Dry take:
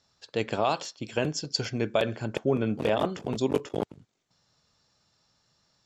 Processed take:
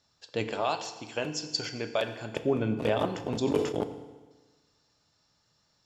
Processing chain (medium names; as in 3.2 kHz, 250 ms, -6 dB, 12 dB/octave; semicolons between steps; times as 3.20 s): 0.52–2.32 s: bass shelf 320 Hz -10 dB; FDN reverb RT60 1.3 s, low-frequency decay 1×, high-frequency decay 0.95×, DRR 8 dB; 3.05–3.78 s: decay stretcher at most 71 dB/s; trim -2 dB